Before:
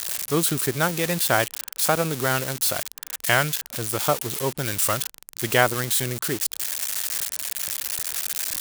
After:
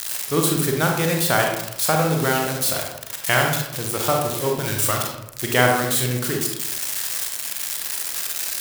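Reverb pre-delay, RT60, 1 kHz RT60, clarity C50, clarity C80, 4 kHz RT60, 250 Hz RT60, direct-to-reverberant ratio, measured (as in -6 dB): 31 ms, 0.85 s, 0.75 s, 3.0 dB, 6.5 dB, 0.45 s, 1.1 s, 0.5 dB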